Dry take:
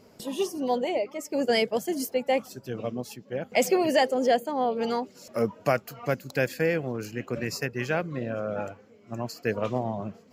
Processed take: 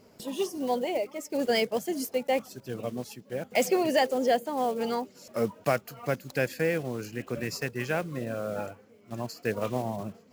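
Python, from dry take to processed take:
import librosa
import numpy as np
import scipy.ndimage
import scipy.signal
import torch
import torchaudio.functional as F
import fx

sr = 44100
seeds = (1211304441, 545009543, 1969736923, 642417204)

y = fx.block_float(x, sr, bits=5)
y = y * 10.0 ** (-2.0 / 20.0)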